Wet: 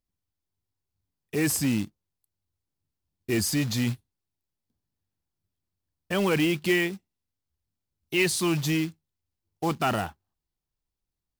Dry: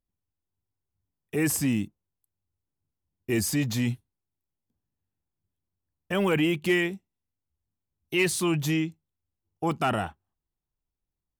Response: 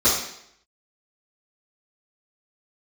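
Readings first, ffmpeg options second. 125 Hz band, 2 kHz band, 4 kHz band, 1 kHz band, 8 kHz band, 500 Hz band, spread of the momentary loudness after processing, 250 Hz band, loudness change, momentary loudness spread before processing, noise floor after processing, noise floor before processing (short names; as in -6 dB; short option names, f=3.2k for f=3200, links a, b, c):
0.0 dB, +0.5 dB, +2.5 dB, 0.0 dB, +1.0 dB, 0.0 dB, 11 LU, 0.0 dB, +0.5 dB, 10 LU, under -85 dBFS, under -85 dBFS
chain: -af "acrusher=bits=4:mode=log:mix=0:aa=0.000001,equalizer=f=4.6k:t=o:w=0.69:g=4.5"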